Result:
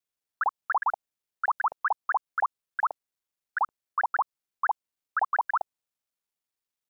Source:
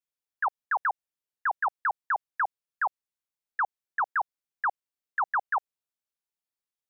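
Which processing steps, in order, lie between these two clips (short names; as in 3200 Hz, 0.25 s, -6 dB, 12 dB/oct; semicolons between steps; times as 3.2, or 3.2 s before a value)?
local time reversal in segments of 41 ms; dynamic EQ 1900 Hz, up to -4 dB, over -39 dBFS, Q 1.7; gain +2.5 dB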